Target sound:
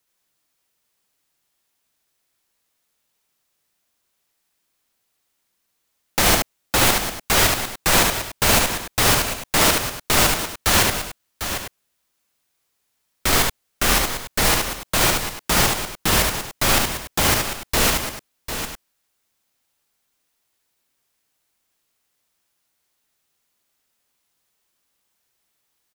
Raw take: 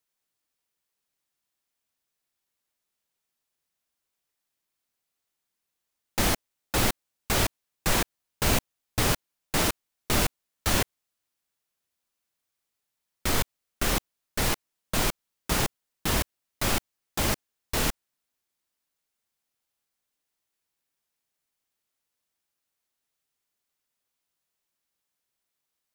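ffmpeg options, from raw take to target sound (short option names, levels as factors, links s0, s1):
-filter_complex "[0:a]acrossover=split=560|1700[s0][s1][s2];[s0]alimiter=level_in=1.26:limit=0.0631:level=0:latency=1,volume=0.794[s3];[s3][s1][s2]amix=inputs=3:normalize=0,aecho=1:1:73|749|849:0.708|0.355|0.168,volume=2.66"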